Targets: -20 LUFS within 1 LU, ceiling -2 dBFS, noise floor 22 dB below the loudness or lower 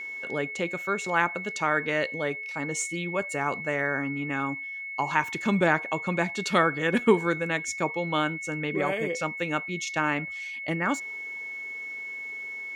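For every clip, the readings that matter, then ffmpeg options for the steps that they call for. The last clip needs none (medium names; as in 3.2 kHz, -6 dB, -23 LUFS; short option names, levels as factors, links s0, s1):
steady tone 2.2 kHz; tone level -34 dBFS; loudness -28.0 LUFS; peak level -7.5 dBFS; loudness target -20.0 LUFS
-> -af "bandreject=f=2200:w=30"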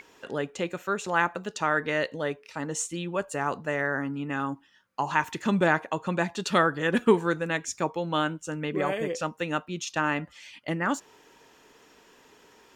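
steady tone not found; loudness -28.5 LUFS; peak level -8.0 dBFS; loudness target -20.0 LUFS
-> -af "volume=2.66,alimiter=limit=0.794:level=0:latency=1"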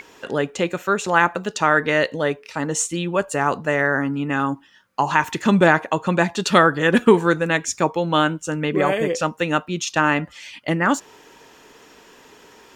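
loudness -20.0 LUFS; peak level -2.0 dBFS; noise floor -50 dBFS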